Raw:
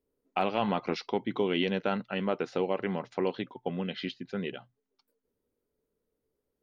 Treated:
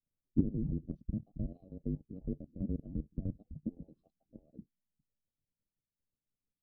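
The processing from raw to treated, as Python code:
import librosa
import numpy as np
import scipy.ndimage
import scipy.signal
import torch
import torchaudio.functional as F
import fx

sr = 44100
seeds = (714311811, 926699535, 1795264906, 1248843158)

y = fx.band_invert(x, sr, width_hz=1000)
y = scipy.signal.sosfilt(scipy.signal.cheby2(4, 60, 830.0, 'lowpass', fs=sr, output='sos'), y)
y = fx.level_steps(y, sr, step_db=11)
y = y * librosa.db_to_amplitude(10.5)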